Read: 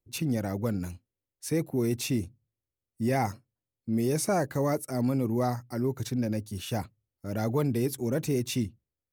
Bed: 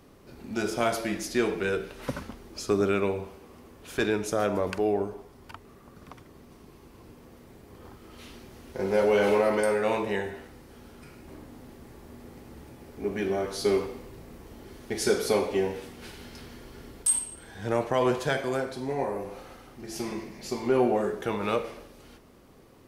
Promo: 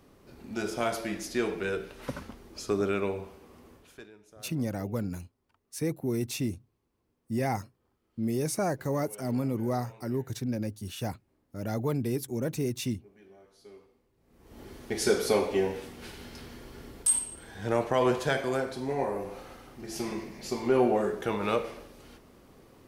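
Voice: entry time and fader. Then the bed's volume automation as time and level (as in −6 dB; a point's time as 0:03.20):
4.30 s, −2.5 dB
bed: 0:03.75 −3.5 dB
0:04.10 −27 dB
0:14.15 −27 dB
0:14.60 −0.5 dB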